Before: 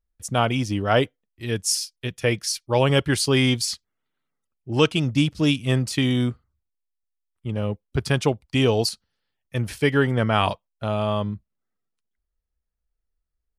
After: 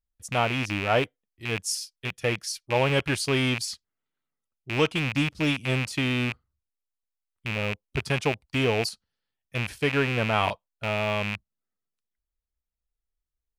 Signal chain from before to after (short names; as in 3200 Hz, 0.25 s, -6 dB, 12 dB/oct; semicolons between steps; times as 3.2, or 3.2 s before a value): rattling part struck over -29 dBFS, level -12 dBFS; dynamic EQ 810 Hz, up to +4 dB, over -33 dBFS, Q 0.81; gain -6.5 dB